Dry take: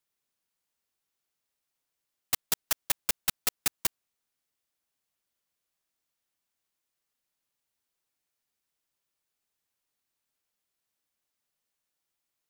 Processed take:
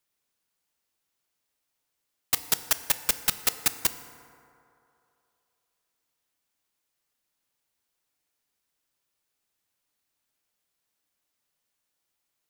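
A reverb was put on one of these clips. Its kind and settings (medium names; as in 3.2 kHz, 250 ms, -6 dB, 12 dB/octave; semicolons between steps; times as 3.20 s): FDN reverb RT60 2.8 s, low-frequency decay 0.75×, high-frequency decay 0.4×, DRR 10.5 dB; trim +3.5 dB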